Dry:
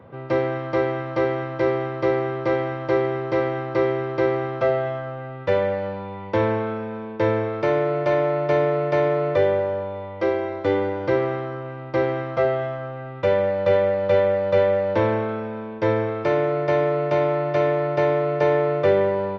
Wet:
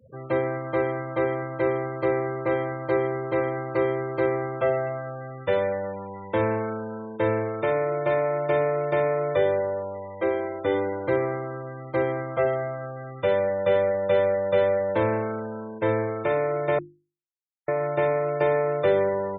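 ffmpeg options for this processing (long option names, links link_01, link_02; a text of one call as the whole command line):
ffmpeg -i in.wav -filter_complex "[0:a]asplit=3[link_01][link_02][link_03];[link_01]atrim=end=16.79,asetpts=PTS-STARTPTS,afade=type=out:start_time=16.786:duration=0.004:curve=hsin[link_04];[link_02]atrim=start=16.79:end=17.68,asetpts=PTS-STARTPTS,volume=0[link_05];[link_03]atrim=start=17.68,asetpts=PTS-STARTPTS,afade=type=in:duration=0.004:curve=hsin[link_06];[link_04][link_05][link_06]concat=n=3:v=0:a=1,afftfilt=real='re*gte(hypot(re,im),0.0224)':imag='im*gte(hypot(re,im),0.0224)':win_size=1024:overlap=0.75,highshelf=frequency=4400:gain=8.5,bandreject=frequency=50:width_type=h:width=6,bandreject=frequency=100:width_type=h:width=6,bandreject=frequency=150:width_type=h:width=6,bandreject=frequency=200:width_type=h:width=6,bandreject=frequency=250:width_type=h:width=6,bandreject=frequency=300:width_type=h:width=6,bandreject=frequency=350:width_type=h:width=6,volume=-3dB" out.wav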